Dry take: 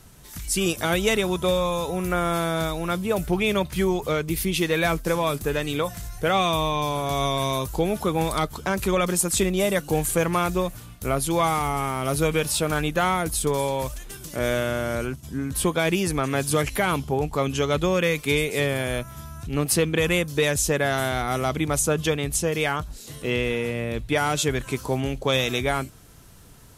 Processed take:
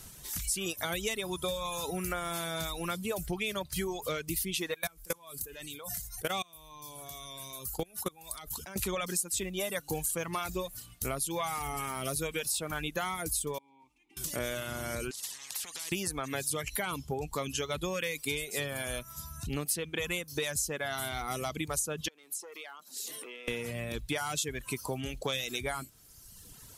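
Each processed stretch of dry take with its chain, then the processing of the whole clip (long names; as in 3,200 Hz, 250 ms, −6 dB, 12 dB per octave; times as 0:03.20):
0:04.74–0:08.76: output level in coarse steps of 21 dB + high-shelf EQ 7,800 Hz +10.5 dB
0:13.58–0:14.17: formant filter u + downward compressor 2.5 to 1, threshold −48 dBFS
0:15.11–0:15.92: downward compressor 3 to 1, threshold −34 dBFS + band-pass filter 130–6,900 Hz + every bin compressed towards the loudest bin 10 to 1
0:22.08–0:23.48: high-pass filter 270 Hz 24 dB per octave + downward compressor 12 to 1, threshold −38 dBFS + saturating transformer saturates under 2,000 Hz
whole clip: reverb reduction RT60 1.2 s; high-shelf EQ 2,800 Hz +10 dB; downward compressor 4 to 1, threshold −29 dBFS; level −3 dB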